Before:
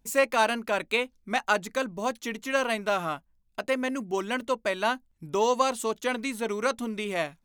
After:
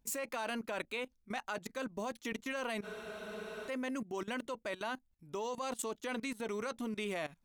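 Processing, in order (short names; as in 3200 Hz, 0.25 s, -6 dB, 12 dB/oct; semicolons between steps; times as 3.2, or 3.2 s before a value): level quantiser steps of 18 dB; spectral freeze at 2.85, 0.82 s; gain -1.5 dB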